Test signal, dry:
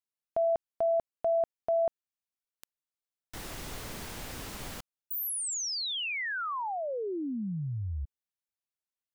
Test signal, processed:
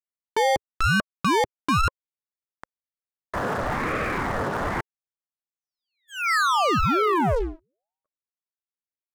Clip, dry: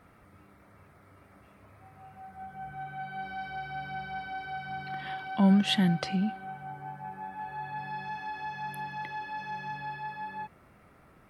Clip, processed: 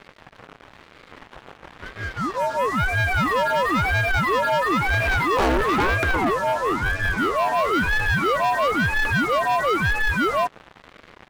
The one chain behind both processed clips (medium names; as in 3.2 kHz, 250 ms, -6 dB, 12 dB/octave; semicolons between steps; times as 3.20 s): Chebyshev band-pass 250–1600 Hz, order 4; waveshaping leveller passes 5; ring modulator with a swept carrier 500 Hz, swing 75%, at 1 Hz; trim +7 dB